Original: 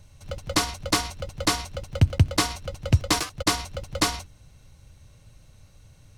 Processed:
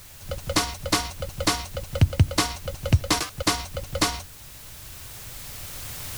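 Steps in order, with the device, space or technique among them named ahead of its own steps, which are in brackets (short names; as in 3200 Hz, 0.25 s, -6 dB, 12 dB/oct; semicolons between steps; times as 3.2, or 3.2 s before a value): cheap recorder with automatic gain (white noise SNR 20 dB; recorder AGC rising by 5.4 dB/s)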